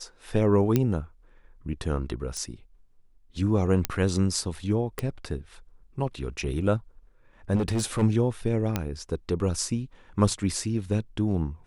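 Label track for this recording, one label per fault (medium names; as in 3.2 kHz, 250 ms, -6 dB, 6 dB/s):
0.760000	0.760000	pop -9 dBFS
2.370000	2.370000	pop -21 dBFS
3.850000	3.850000	pop -7 dBFS
4.990000	4.990000	pop -14 dBFS
7.550000	8.030000	clipped -21.5 dBFS
8.760000	8.760000	pop -11 dBFS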